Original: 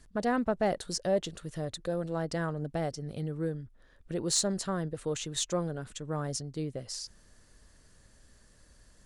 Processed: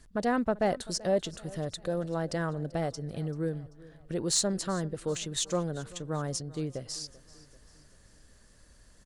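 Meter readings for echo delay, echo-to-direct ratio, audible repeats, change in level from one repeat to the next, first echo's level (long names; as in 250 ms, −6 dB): 388 ms, −19.5 dB, 3, −6.0 dB, −20.5 dB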